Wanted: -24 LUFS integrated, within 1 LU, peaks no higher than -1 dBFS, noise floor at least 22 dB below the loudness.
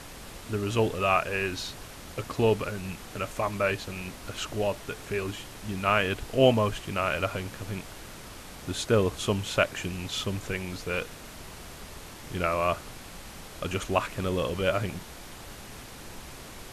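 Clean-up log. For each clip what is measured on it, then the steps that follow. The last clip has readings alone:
noise floor -45 dBFS; noise floor target -51 dBFS; loudness -29.0 LUFS; peak -7.5 dBFS; loudness target -24.0 LUFS
-> noise print and reduce 6 dB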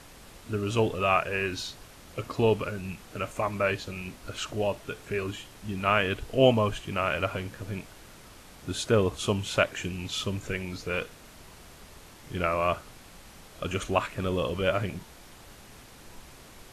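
noise floor -51 dBFS; loudness -29.0 LUFS; peak -7.5 dBFS; loudness target -24.0 LUFS
-> gain +5 dB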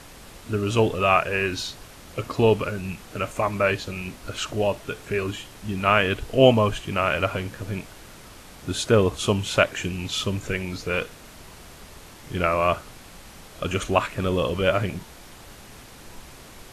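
loudness -24.0 LUFS; peak -2.5 dBFS; noise floor -46 dBFS

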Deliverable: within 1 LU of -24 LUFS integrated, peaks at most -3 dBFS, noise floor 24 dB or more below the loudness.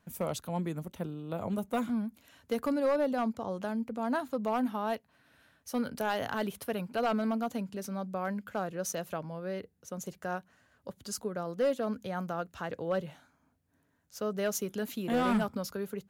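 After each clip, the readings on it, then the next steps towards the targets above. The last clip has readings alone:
clipped 0.6%; flat tops at -22.5 dBFS; loudness -34.0 LUFS; peak -22.5 dBFS; loudness target -24.0 LUFS
-> clip repair -22.5 dBFS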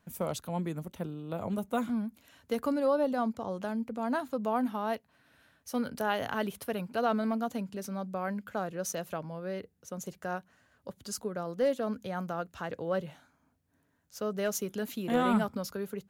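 clipped 0.0%; loudness -33.5 LUFS; peak -14.5 dBFS; loudness target -24.0 LUFS
-> gain +9.5 dB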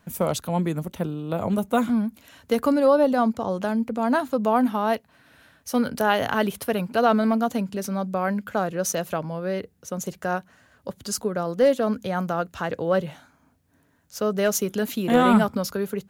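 loudness -24.0 LUFS; peak -5.0 dBFS; noise floor -63 dBFS

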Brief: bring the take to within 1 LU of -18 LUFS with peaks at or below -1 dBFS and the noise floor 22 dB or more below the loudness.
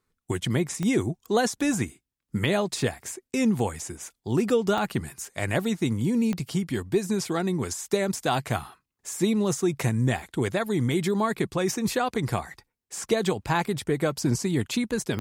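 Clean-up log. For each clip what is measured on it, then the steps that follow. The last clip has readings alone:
clicks 4; loudness -26.5 LUFS; peak -10.5 dBFS; loudness target -18.0 LUFS
-> de-click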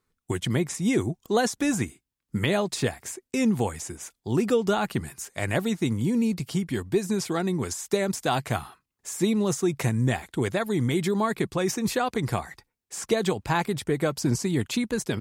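clicks 0; loudness -26.5 LUFS; peak -10.5 dBFS; loudness target -18.0 LUFS
-> gain +8.5 dB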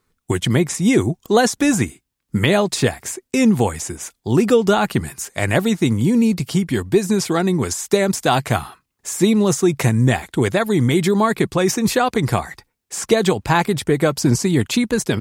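loudness -18.0 LUFS; peak -2.0 dBFS; noise floor -76 dBFS

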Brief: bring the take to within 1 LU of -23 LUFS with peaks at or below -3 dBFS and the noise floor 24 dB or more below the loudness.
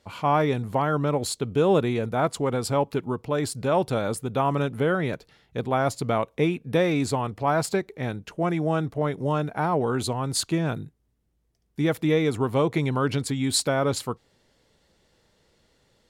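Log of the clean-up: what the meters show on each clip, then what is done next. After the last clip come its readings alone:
loudness -25.5 LUFS; peak -9.5 dBFS; loudness target -23.0 LUFS
-> gain +2.5 dB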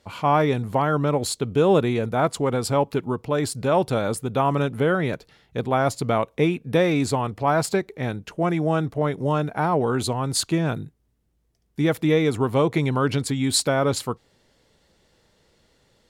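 loudness -23.0 LUFS; peak -7.0 dBFS; noise floor -67 dBFS

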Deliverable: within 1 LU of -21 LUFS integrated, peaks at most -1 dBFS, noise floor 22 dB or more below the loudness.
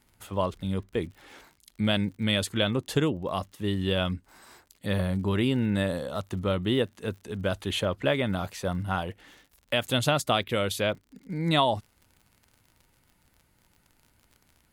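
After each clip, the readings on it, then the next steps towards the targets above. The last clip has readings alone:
ticks 55/s; loudness -28.5 LUFS; peak -10.5 dBFS; loudness target -21.0 LUFS
-> de-click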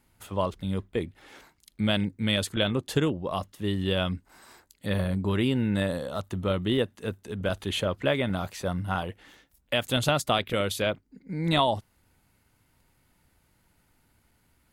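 ticks 0.82/s; loudness -28.5 LUFS; peak -10.5 dBFS; loudness target -21.0 LUFS
-> gain +7.5 dB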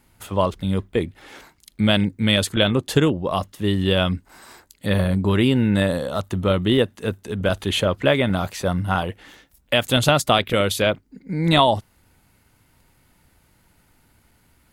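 loudness -21.0 LUFS; peak -3.0 dBFS; noise floor -61 dBFS

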